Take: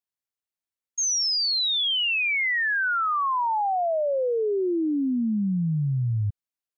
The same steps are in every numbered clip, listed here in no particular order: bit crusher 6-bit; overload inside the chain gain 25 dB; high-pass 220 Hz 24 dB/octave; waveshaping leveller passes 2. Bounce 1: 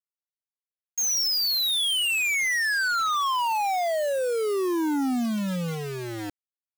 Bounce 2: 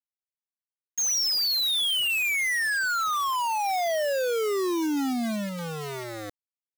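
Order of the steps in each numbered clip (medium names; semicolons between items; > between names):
overload inside the chain > high-pass > waveshaping leveller > bit crusher; overload inside the chain > waveshaping leveller > high-pass > bit crusher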